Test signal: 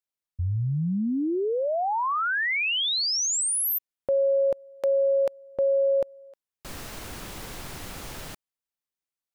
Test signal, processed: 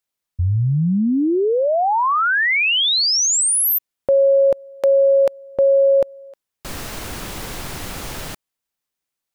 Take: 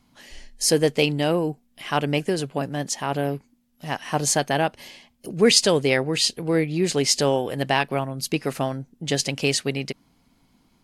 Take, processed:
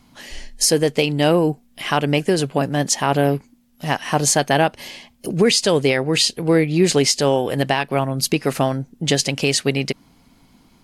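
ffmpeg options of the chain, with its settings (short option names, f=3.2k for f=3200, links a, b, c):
-af "alimiter=limit=-14.5dB:level=0:latency=1:release=346,volume=8.5dB"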